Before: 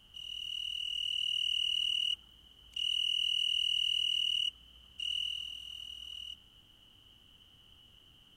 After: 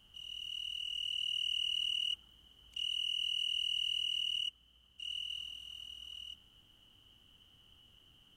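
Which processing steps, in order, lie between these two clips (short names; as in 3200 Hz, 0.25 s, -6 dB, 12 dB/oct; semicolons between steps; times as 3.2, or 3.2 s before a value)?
2.85–5.3 upward expander 1.5:1, over -42 dBFS; gain -3 dB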